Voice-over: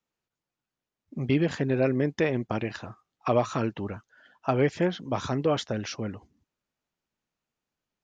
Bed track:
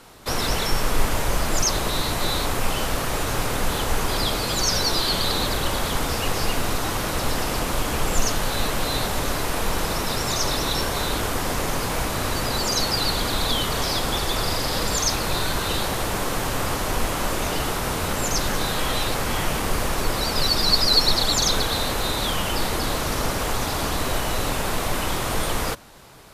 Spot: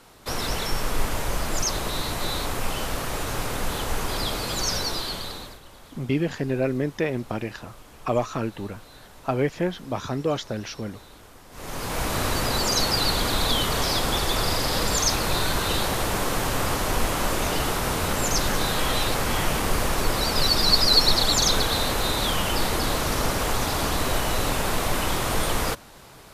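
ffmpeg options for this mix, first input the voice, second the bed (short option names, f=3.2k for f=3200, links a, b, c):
-filter_complex "[0:a]adelay=4800,volume=0dB[a];[1:a]volume=19.5dB,afade=t=out:st=4.71:d=0.89:silence=0.105925,afade=t=in:st=11.51:d=0.64:silence=0.0668344[b];[a][b]amix=inputs=2:normalize=0"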